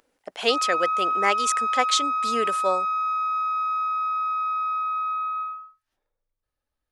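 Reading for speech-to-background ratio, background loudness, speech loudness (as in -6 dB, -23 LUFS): -1.0 dB, -25.0 LUFS, -26.0 LUFS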